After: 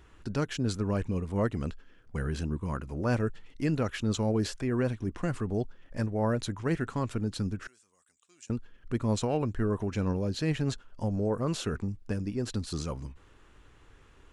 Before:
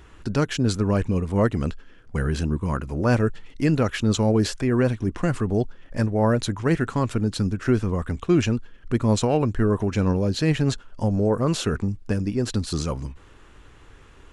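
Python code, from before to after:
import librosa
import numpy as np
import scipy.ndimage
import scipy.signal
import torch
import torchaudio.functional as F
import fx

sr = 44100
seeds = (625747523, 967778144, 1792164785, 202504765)

y = fx.bandpass_q(x, sr, hz=7900.0, q=3.3, at=(7.67, 8.5))
y = y * librosa.db_to_amplitude(-8.0)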